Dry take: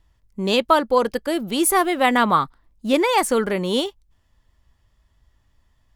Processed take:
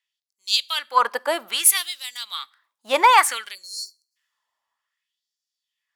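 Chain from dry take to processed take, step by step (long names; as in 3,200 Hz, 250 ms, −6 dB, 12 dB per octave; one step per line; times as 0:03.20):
time-frequency box erased 0:03.55–0:04.16, 590–4,100 Hz
in parallel at +1 dB: downward compressor 6 to 1, threshold −24 dBFS, peak gain reduction 13.5 dB
on the sum: auto-filter high-pass sine 0.6 Hz 850–5,100 Hz
gain into a clipping stage and back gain 5.5 dB
on a send at −21.5 dB: convolution reverb RT60 0.60 s, pre-delay 4 ms
on the sum: multiband upward and downward expander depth 40%
level −1 dB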